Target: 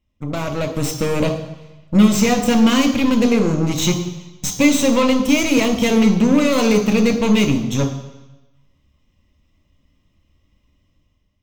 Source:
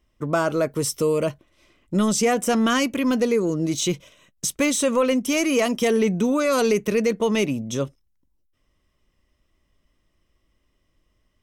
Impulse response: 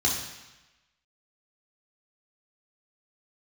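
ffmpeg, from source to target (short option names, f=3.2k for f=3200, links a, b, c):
-filter_complex "[0:a]aeval=exprs='0.316*(cos(1*acos(clip(val(0)/0.316,-1,1)))-cos(1*PI/2))+0.0316*(cos(6*acos(clip(val(0)/0.316,-1,1)))-cos(6*PI/2))+0.0126*(cos(7*acos(clip(val(0)/0.316,-1,1)))-cos(7*PI/2))+0.0562*(cos(8*acos(clip(val(0)/0.316,-1,1)))-cos(8*PI/2))':c=same,equalizer=f=160:t=o:w=0.67:g=4,equalizer=f=1.6k:t=o:w=0.67:g=-9,equalizer=f=10k:t=o:w=0.67:g=-11,dynaudnorm=f=190:g=7:m=10dB,asplit=2[a][b];[1:a]atrim=start_sample=2205[c];[b][c]afir=irnorm=-1:irlink=0,volume=-14dB[d];[a][d]amix=inputs=2:normalize=0,volume=-2dB"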